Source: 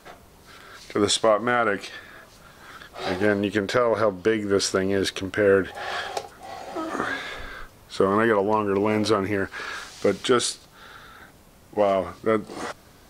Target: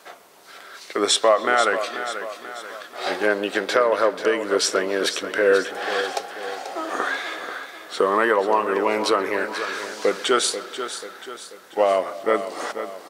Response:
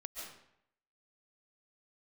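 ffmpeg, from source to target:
-filter_complex "[0:a]highpass=430,aecho=1:1:487|974|1461|1948|2435:0.299|0.14|0.0659|0.031|0.0146,asplit=2[a][b];[1:a]atrim=start_sample=2205,lowpass=4k,adelay=129[c];[b][c]afir=irnorm=-1:irlink=0,volume=-15dB[d];[a][d]amix=inputs=2:normalize=0,volume=3.5dB"

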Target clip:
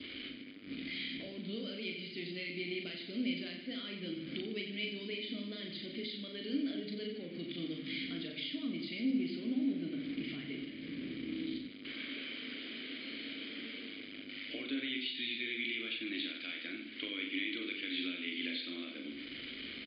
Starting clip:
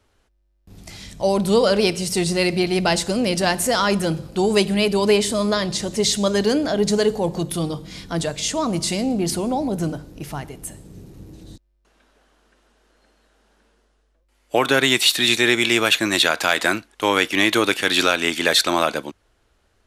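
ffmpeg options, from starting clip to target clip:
-filter_complex "[0:a]aeval=exprs='val(0)+0.5*0.0316*sgn(val(0))':c=same,lowshelf=f=390:g=-8,acompressor=threshold=-35dB:ratio=5,bandreject=f=50:t=h:w=6,bandreject=f=100:t=h:w=6,bandreject=f=150:t=h:w=6,bandreject=f=200:t=h:w=6,bandreject=f=250:t=h:w=6,bandreject=f=300:t=h:w=6,bandreject=f=350:t=h:w=6,bandreject=f=400:t=h:w=6,asplit=2[a][b];[b]aecho=0:1:40|90|152.5|230.6|328.3:0.631|0.398|0.251|0.158|0.1[c];[a][c]amix=inputs=2:normalize=0,adynamicequalizer=threshold=0.00398:dfrequency=1600:dqfactor=1.4:tfrequency=1600:tqfactor=1.4:attack=5:release=100:ratio=0.375:range=2.5:mode=cutabove:tftype=bell,acrusher=bits=7:mix=0:aa=0.5,asplit=3[d][e][f];[d]bandpass=f=270:t=q:w=8,volume=0dB[g];[e]bandpass=f=2.29k:t=q:w=8,volume=-6dB[h];[f]bandpass=f=3.01k:t=q:w=8,volume=-9dB[i];[g][h][i]amix=inputs=3:normalize=0,volume=10dB" -ar 11025 -c:a libmp3lame -b:a 32k

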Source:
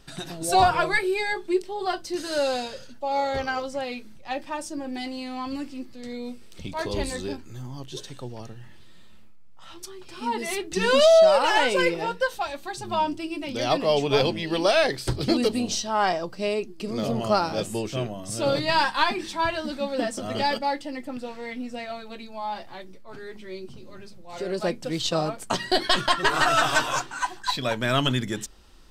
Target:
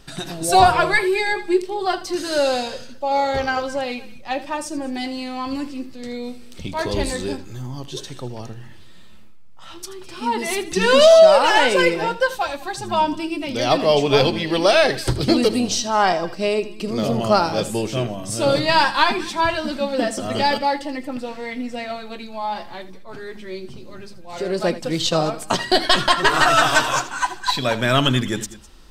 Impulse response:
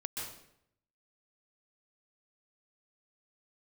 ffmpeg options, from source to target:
-filter_complex "[0:a]asplit=2[a][b];[1:a]atrim=start_sample=2205,afade=t=out:st=0.18:d=0.01,atrim=end_sample=8379,adelay=80[c];[b][c]afir=irnorm=-1:irlink=0,volume=-12dB[d];[a][d]amix=inputs=2:normalize=0,volume=5.5dB"

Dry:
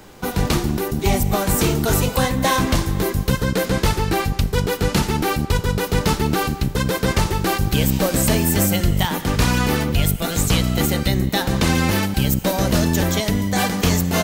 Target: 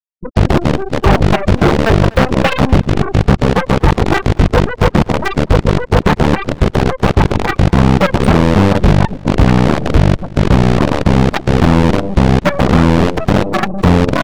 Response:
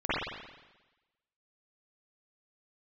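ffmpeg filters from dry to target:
-filter_complex "[0:a]bandreject=f=1k:w=7.3,afftfilt=real='re*gte(hypot(re,im),0.501)':imag='im*gte(hypot(re,im),0.501)':win_size=1024:overlap=0.75,acrusher=bits=4:dc=4:mix=0:aa=0.000001,afftfilt=real='re*gte(hypot(re,im),0.0158)':imag='im*gte(hypot(re,im),0.0158)':win_size=1024:overlap=0.75,acontrast=22,aeval=exprs='0.596*(cos(1*acos(clip(val(0)/0.596,-1,1)))-cos(1*PI/2))+0.237*(cos(7*acos(clip(val(0)/0.596,-1,1)))-cos(7*PI/2))':c=same,acrossover=split=4500[a][b];[b]acompressor=threshold=-43dB:ratio=4:attack=1:release=60[c];[a][c]amix=inputs=2:normalize=0,asoftclip=type=tanh:threshold=-7dB,asplit=2[d][e];[e]aecho=0:1:247|494:0.0794|0.0214[f];[d][f]amix=inputs=2:normalize=0,volume=6dB"

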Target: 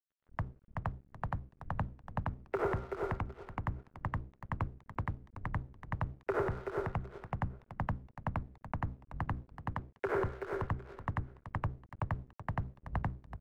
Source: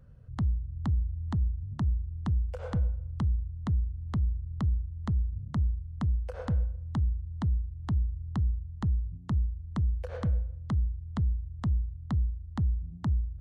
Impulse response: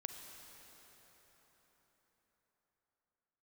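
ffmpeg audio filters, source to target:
-filter_complex "[0:a]asettb=1/sr,asplit=3[a][b][c];[a]atrim=end=0.694[d];[b]atrim=start=0.69:end=1.65,asetpts=PTS-STARTPTS,afade=t=in:d=0.004:c=qsin,afade=t=out:st=0.956:d=0.004:c=qsin,equalizer=f=290:w=0.34:g=-2[e];[c]atrim=start=1.646[f];[d][e]acrossfade=d=0.004:c1=hsin:c2=qsin[g];[g][f]acrossfade=d=0.004:c1=qsin:c2=hsin,acrossover=split=850[h][i];[h]acompressor=threshold=-37dB:ratio=16[j];[j][i]amix=inputs=2:normalize=0,asettb=1/sr,asplit=3[k][l][m];[k]atrim=end=9.414[n];[l]atrim=start=9.41:end=10.17,asetpts=PTS-STARTPTS,afade=t=in:d=0.004:c=qsin,afade=t=out:st=0.756:d=0.004:c=qsin,lowshelf=f=230:g=-10[o];[m]atrim=start=10.166[p];[n][o]acrossfade=d=0.004:c1=hsin:c2=qsin[q];[q][p]acrossfade=d=0.004:c1=qsin:c2=hsin,bandreject=f=60:t=h:w=6,bandreject=f=120:t=h:w=6,bandreject=f=180:t=h:w=6,bandreject=f=240:t=h:w=6,bandreject=f=300:t=h:w=6,bandreject=f=360:t=h:w=6,bandreject=f=420:t=h:w=6,bandreject=f=480:t=h:w=6,bandreject=f=540:t=h:w=6,aeval=exprs='0.0376*(abs(mod(val(0)/0.0376+3,4)-2)-1)':c=same,highpass=f=180:t=q:w=0.5412,highpass=f=180:t=q:w=1.307,lowpass=f=2.3k:t=q:w=0.5176,lowpass=f=2.3k:t=q:w=0.7071,lowpass=f=2.3k:t=q:w=1.932,afreqshift=-110,dynaudnorm=f=150:g=5:m=14.5dB,asplit=2[r][s];[s]aecho=0:1:378|756|1134:0.376|0.094|0.0235[t];[r][t]amix=inputs=2:normalize=0,alimiter=level_in=0.5dB:limit=-24dB:level=0:latency=1:release=117,volume=-0.5dB,aeval=exprs='sgn(val(0))*max(abs(val(0))-0.00141,0)':c=same,volume=2.5dB"

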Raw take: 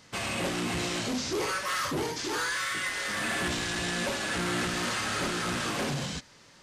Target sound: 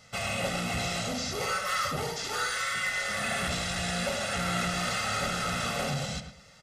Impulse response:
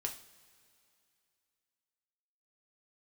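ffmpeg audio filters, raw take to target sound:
-filter_complex "[0:a]aecho=1:1:1.5:0.9,asplit=2[a][b];[b]adelay=107,lowpass=f=2.1k:p=1,volume=-7dB,asplit=2[c][d];[d]adelay=107,lowpass=f=2.1k:p=1,volume=0.3,asplit=2[e][f];[f]adelay=107,lowpass=f=2.1k:p=1,volume=0.3,asplit=2[g][h];[h]adelay=107,lowpass=f=2.1k:p=1,volume=0.3[i];[c][e][g][i]amix=inputs=4:normalize=0[j];[a][j]amix=inputs=2:normalize=0,volume=-2.5dB"

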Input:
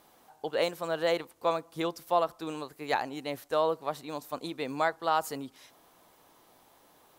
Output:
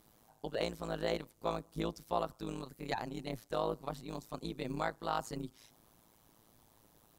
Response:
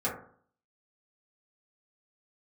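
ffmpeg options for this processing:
-filter_complex "[0:a]bass=f=250:g=15,treble=f=4k:g=6,acrossover=split=8000[a][b];[b]acompressor=threshold=-52dB:ratio=4:attack=1:release=60[c];[a][c]amix=inputs=2:normalize=0,tremolo=f=110:d=0.947,volume=-5dB"

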